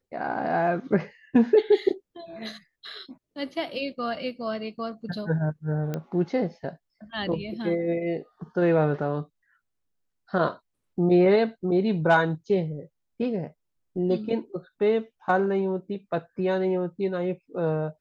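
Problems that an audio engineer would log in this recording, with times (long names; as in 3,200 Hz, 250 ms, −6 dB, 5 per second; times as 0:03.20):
0:05.94: click −17 dBFS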